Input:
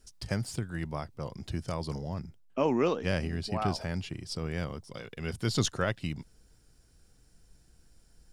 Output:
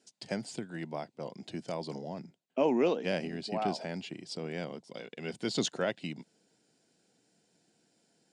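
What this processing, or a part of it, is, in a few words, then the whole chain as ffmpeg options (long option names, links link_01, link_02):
television speaker: -af "highpass=frequency=190:width=0.5412,highpass=frequency=190:width=1.3066,equalizer=frequency=690:width_type=q:width=4:gain=3,equalizer=frequency=1200:width_type=q:width=4:gain=-10,equalizer=frequency=1700:width_type=q:width=4:gain=-3,equalizer=frequency=5600:width_type=q:width=4:gain=-6,lowpass=frequency=7900:width=0.5412,lowpass=frequency=7900:width=1.3066"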